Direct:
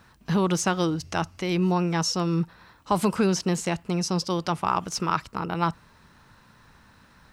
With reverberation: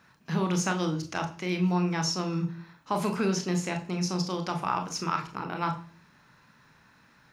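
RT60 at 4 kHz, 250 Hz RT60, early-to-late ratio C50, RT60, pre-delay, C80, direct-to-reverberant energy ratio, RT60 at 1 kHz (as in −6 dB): 0.50 s, 0.60 s, 12.0 dB, 0.40 s, 25 ms, 17.0 dB, 5.0 dB, 0.35 s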